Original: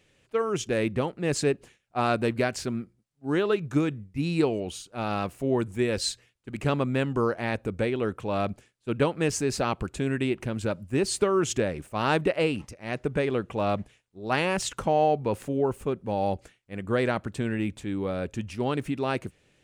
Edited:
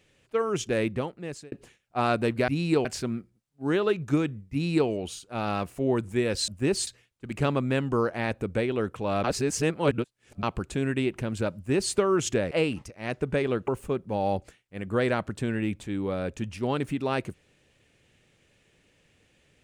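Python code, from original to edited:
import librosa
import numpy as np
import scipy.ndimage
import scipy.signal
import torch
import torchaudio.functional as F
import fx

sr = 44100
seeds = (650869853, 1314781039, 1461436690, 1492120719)

y = fx.edit(x, sr, fx.fade_out_span(start_s=0.8, length_s=0.72),
    fx.duplicate(start_s=4.15, length_s=0.37, to_s=2.48),
    fx.reverse_span(start_s=8.48, length_s=1.19),
    fx.duplicate(start_s=10.79, length_s=0.39, to_s=6.11),
    fx.cut(start_s=11.75, length_s=0.59),
    fx.cut(start_s=13.51, length_s=2.14), tone=tone)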